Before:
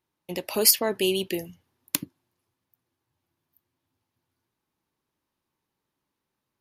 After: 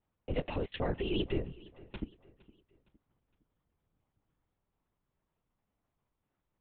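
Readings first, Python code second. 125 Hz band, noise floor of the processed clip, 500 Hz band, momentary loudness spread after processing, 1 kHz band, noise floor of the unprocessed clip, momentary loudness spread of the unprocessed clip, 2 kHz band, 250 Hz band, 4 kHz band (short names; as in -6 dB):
+2.5 dB, -85 dBFS, -9.0 dB, 13 LU, -7.5 dB, -84 dBFS, 15 LU, -10.0 dB, -5.5 dB, -16.5 dB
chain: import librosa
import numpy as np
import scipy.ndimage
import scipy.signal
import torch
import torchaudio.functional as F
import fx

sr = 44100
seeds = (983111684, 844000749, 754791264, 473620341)

p1 = fx.low_shelf(x, sr, hz=84.0, db=10.0)
p2 = fx.over_compress(p1, sr, threshold_db=-27.0, ratio=-1.0)
p3 = fx.lpc_vocoder(p2, sr, seeds[0], excitation='whisper', order=8)
p4 = fx.high_shelf(p3, sr, hz=2400.0, db=-10.0)
p5 = p4 + fx.echo_feedback(p4, sr, ms=462, feedback_pct=42, wet_db=-21.5, dry=0)
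y = p5 * 10.0 ** (-4.5 / 20.0)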